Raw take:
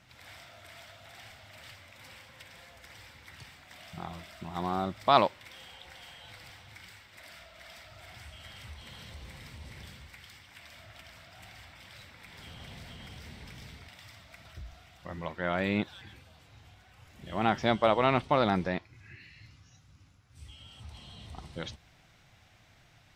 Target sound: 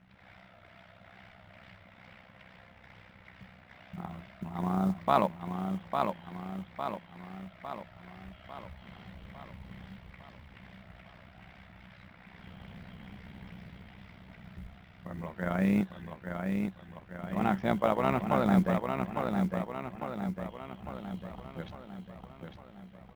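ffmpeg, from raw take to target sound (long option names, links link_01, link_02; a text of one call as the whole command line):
ffmpeg -i in.wav -af "aecho=1:1:853|1706|2559|3412|4265|5118|5971:0.562|0.304|0.164|0.0885|0.0478|0.0258|0.0139,tremolo=f=63:d=0.71,lowpass=2200,equalizer=frequency=190:width=5:gain=13,acrusher=bits=8:mode=log:mix=0:aa=0.000001" out.wav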